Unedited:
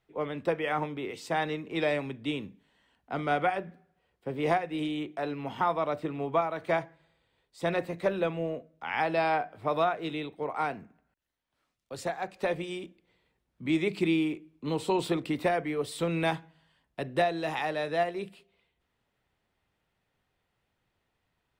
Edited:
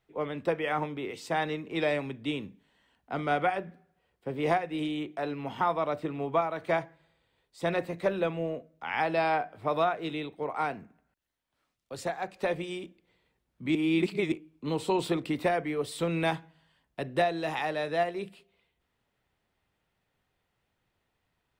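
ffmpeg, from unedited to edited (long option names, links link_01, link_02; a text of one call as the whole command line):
ffmpeg -i in.wav -filter_complex "[0:a]asplit=3[link_01][link_02][link_03];[link_01]atrim=end=13.752[link_04];[link_02]atrim=start=13.748:end=14.322,asetpts=PTS-STARTPTS,areverse[link_05];[link_03]atrim=start=14.318[link_06];[link_04][link_05]acrossfade=duration=0.004:curve1=hsin:curve2=hsin[link_07];[link_07][link_06]acrossfade=duration=0.004:curve1=hsin:curve2=hsin" out.wav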